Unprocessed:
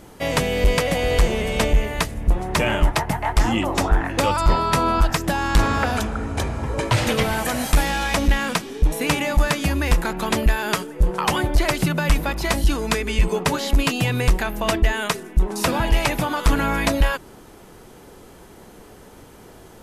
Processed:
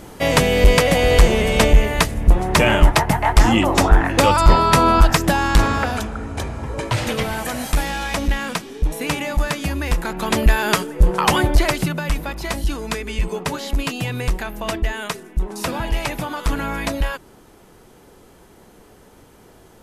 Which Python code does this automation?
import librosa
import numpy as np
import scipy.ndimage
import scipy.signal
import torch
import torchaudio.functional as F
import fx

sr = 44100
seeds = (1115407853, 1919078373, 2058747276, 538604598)

y = fx.gain(x, sr, db=fx.line((5.24, 5.5), (6.09, -2.0), (9.98, -2.0), (10.54, 4.5), (11.49, 4.5), (12.05, -3.5)))